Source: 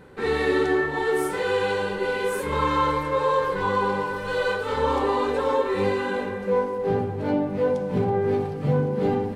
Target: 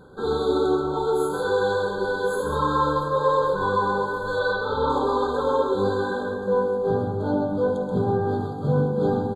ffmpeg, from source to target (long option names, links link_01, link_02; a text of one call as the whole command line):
ffmpeg -i in.wav -filter_complex "[0:a]asettb=1/sr,asplit=3[link_01][link_02][link_03];[link_01]atrim=end=4.394[link_04];[link_02]atrim=start=4.39:end=4.9,asetpts=PTS-STARTPTS,afade=type=in:duration=0.004:curve=qsin,afade=type=out:start_time=0.506:duration=0.004:curve=qsin,highshelf=frequency=5500:width_type=q:width=1.5:gain=-8.5[link_05];[link_03]atrim=start=4.896[link_06];[link_04][link_05]acrossfade=duration=0.004:curve1=hsin:curve2=qsin[link_07];[link_07][link_06]acrossfade=duration=0.004:curve1=qsin:curve2=hsin,aecho=1:1:130:0.501,afftfilt=real='re*eq(mod(floor(b*sr/1024/1600),2),0)':imag='im*eq(mod(floor(b*sr/1024/1600),2),0)':win_size=1024:overlap=0.75" out.wav